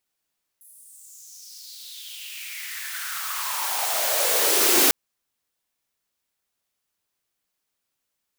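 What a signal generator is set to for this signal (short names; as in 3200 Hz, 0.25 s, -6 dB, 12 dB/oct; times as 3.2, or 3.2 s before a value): swept filtered noise white, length 4.30 s highpass, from 11000 Hz, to 310 Hz, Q 4.5, exponential, gain ramp +38 dB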